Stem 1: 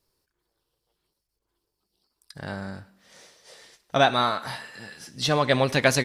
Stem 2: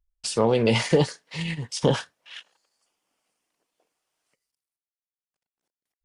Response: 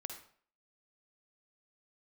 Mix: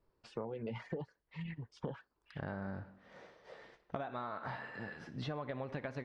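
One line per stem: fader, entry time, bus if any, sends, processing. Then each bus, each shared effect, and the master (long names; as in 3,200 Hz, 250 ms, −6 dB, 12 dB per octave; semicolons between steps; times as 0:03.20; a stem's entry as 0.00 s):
−1.5 dB, 0.00 s, send −10 dB, downward compressor, threshold −26 dBFS, peak gain reduction 12 dB
−9.5 dB, 0.00 s, no send, reverb reduction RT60 1.4 s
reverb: on, RT60 0.50 s, pre-delay 46 ms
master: low-pass filter 1,600 Hz 12 dB per octave; downward compressor 6 to 1, threshold −38 dBFS, peak gain reduction 14 dB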